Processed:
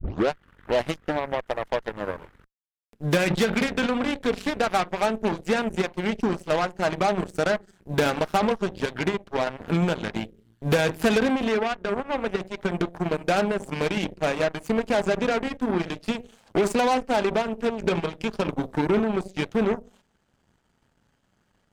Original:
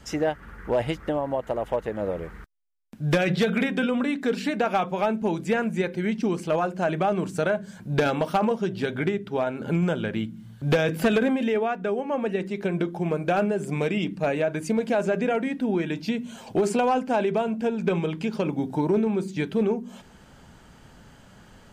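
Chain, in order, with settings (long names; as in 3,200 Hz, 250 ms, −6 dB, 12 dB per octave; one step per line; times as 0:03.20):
turntable start at the beginning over 0.31 s
harmonic generator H 5 −34 dB, 7 −17 dB, 8 −20 dB, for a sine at −13 dBFS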